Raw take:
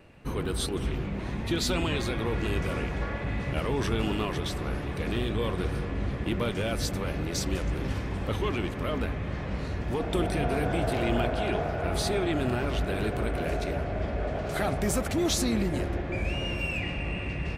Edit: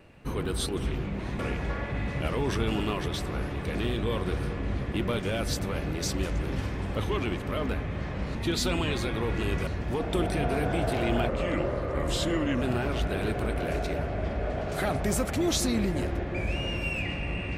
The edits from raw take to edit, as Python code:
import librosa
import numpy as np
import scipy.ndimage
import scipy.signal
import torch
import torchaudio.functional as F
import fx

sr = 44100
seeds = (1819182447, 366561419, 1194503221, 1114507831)

y = fx.edit(x, sr, fx.move(start_s=1.39, length_s=1.32, to_s=9.67),
    fx.speed_span(start_s=11.29, length_s=1.1, speed=0.83), tone=tone)